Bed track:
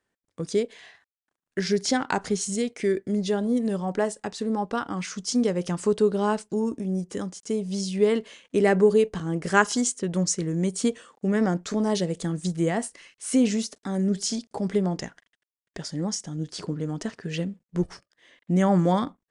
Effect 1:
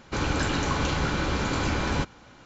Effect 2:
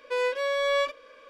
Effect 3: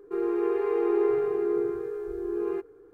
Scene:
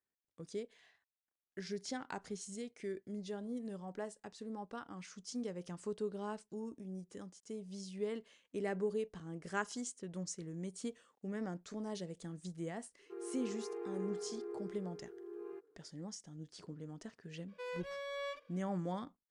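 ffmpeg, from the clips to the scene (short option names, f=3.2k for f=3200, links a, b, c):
-filter_complex "[0:a]volume=-18dB[a];[3:a]highpass=210,atrim=end=2.93,asetpts=PTS-STARTPTS,volume=-17.5dB,afade=t=in:d=0.004:c=hsin,afade=t=out:st=2.926:d=0.004:c=hsin,adelay=12990[b];[2:a]atrim=end=1.29,asetpts=PTS-STARTPTS,volume=-17dB,afade=t=in:d=0.004:c=hsin,afade=t=out:st=1.286:d=0.004:c=hsin,adelay=770868S[c];[a][b][c]amix=inputs=3:normalize=0"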